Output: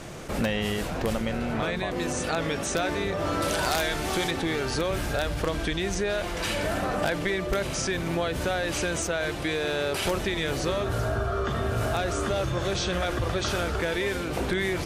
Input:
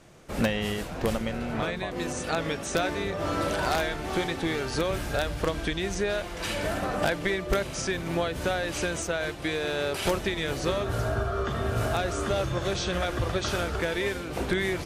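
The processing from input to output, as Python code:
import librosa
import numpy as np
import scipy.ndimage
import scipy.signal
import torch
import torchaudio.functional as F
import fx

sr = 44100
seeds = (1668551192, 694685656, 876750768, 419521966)

y = fx.high_shelf(x, sr, hz=3700.0, db=9.5, at=(3.42, 4.31))
y = fx.env_flatten(y, sr, amount_pct=50)
y = y * 10.0 ** (-2.5 / 20.0)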